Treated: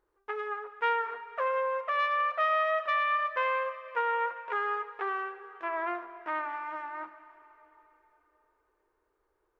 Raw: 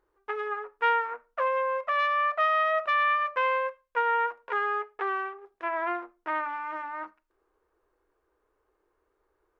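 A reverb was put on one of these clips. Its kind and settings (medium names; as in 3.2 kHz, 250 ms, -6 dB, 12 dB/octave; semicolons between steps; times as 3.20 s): plate-style reverb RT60 3.5 s, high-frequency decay 1×, DRR 12 dB; trim -3 dB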